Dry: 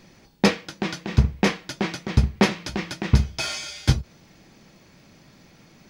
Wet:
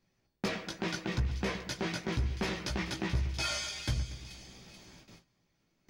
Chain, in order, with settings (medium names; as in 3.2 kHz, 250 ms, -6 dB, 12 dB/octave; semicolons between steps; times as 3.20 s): overload inside the chain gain 10.5 dB; peak limiter -17.5 dBFS, peak gain reduction 7 dB; chorus voices 6, 0.62 Hz, delay 17 ms, depth 1.7 ms; compression 3:1, threshold -30 dBFS, peak gain reduction 9 dB; two-band feedback delay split 2.3 kHz, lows 118 ms, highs 432 ms, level -12 dB; gate with hold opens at -43 dBFS